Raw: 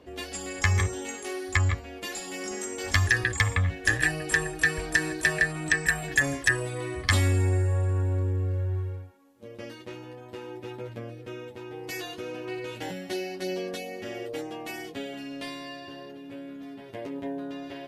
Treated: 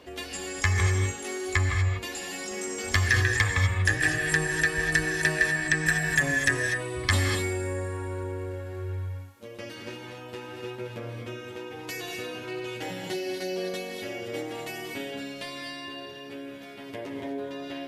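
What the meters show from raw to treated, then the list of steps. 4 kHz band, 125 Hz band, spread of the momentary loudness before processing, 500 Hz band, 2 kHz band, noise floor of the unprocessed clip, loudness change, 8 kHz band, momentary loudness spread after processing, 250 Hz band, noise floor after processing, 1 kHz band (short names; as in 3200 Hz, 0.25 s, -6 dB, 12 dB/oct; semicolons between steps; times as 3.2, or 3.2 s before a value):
+1.5 dB, -1.0 dB, 17 LU, +1.0 dB, +1.0 dB, -44 dBFS, 0.0 dB, +1.0 dB, 16 LU, 0.0 dB, -42 dBFS, +0.5 dB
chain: non-linear reverb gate 0.27 s rising, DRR 2.5 dB; mismatched tape noise reduction encoder only; gain -1 dB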